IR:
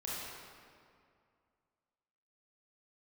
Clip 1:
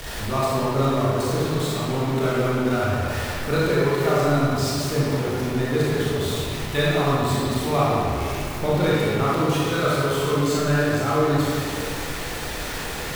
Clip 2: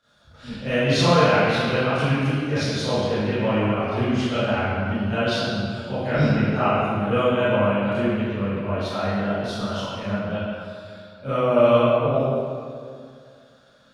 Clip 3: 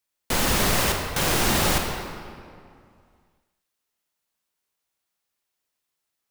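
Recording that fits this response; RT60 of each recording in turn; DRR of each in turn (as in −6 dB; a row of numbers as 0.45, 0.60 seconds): 1; 2.3, 2.3, 2.3 seconds; −7.5, −16.0, 2.5 decibels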